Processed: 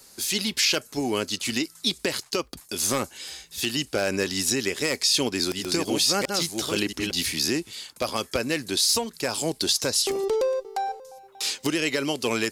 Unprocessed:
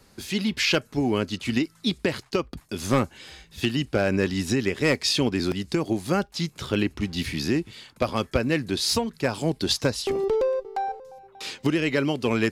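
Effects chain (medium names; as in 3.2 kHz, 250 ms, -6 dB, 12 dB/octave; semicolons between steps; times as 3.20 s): 4.91–7.11 s: chunks repeated in reverse 673 ms, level -4 dB; tone controls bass -9 dB, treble +14 dB; peak limiter -11.5 dBFS, peak gain reduction 10.5 dB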